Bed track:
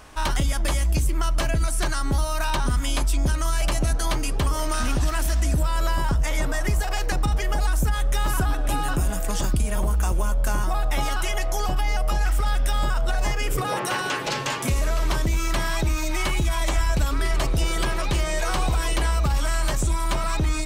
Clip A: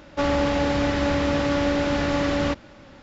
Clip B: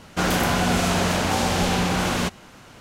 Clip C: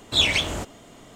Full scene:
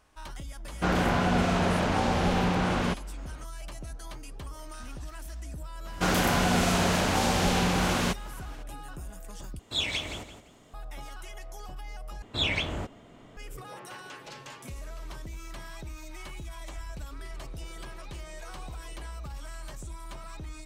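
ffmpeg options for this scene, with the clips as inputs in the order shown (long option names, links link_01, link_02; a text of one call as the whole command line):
ffmpeg -i bed.wav -i cue0.wav -i cue1.wav -i cue2.wav -filter_complex "[2:a]asplit=2[link_01][link_02];[3:a]asplit=2[link_03][link_04];[0:a]volume=-18dB[link_05];[link_01]aemphasis=mode=reproduction:type=75fm[link_06];[link_03]aecho=1:1:170|340|510:0.335|0.0871|0.0226[link_07];[link_04]bass=frequency=250:gain=3,treble=frequency=4000:gain=-12[link_08];[link_05]asplit=3[link_09][link_10][link_11];[link_09]atrim=end=9.594[link_12];[link_07]atrim=end=1.15,asetpts=PTS-STARTPTS,volume=-10dB[link_13];[link_10]atrim=start=10.736:end=12.224[link_14];[link_08]atrim=end=1.15,asetpts=PTS-STARTPTS,volume=-5dB[link_15];[link_11]atrim=start=13.366[link_16];[link_06]atrim=end=2.8,asetpts=PTS-STARTPTS,volume=-4dB,afade=type=in:duration=0.004:curve=hsin,afade=type=out:start_time=2.796:duration=0.004:curve=hsin,adelay=650[link_17];[link_02]atrim=end=2.8,asetpts=PTS-STARTPTS,volume=-3.5dB,afade=type=in:duration=0.02,afade=type=out:start_time=2.78:duration=0.02,adelay=5840[link_18];[link_12][link_13]acrossfade=duration=0.004:curve1=hsin:curve2=hsin[link_19];[link_19][link_14]acrossfade=duration=0.004:curve1=hsin:curve2=hsin[link_20];[link_20][link_15]acrossfade=duration=0.004:curve1=hsin:curve2=hsin[link_21];[link_21][link_16]acrossfade=duration=0.004:curve1=hsin:curve2=hsin[link_22];[link_22][link_17][link_18]amix=inputs=3:normalize=0" out.wav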